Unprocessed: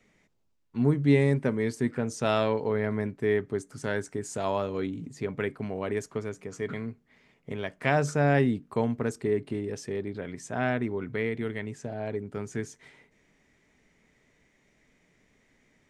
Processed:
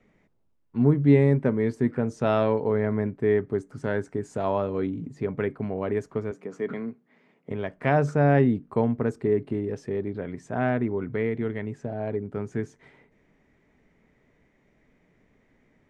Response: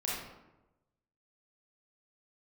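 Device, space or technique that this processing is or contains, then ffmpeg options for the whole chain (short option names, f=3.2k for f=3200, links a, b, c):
through cloth: -filter_complex "[0:a]asettb=1/sr,asplit=3[a][b][c];[a]atrim=end=6.314[d];[b]atrim=start=6.31:end=7.51,asetpts=PTS-STARTPTS,afade=t=in:d=0.004:c=qsin,afade=t=out:st=1.196:d=0.004:c=qsin,highpass=f=170:w=0.5412,highpass=f=170:w=1.3066[e];[c]atrim=start=7.506[f];[d][e]acrossfade=d=0.004:c1=hsin:c2=qsin[g];[g][f]acrossfade=d=0.004:c1=qsin:c2=hsin,highshelf=f=2.9k:g=-18,volume=4dB"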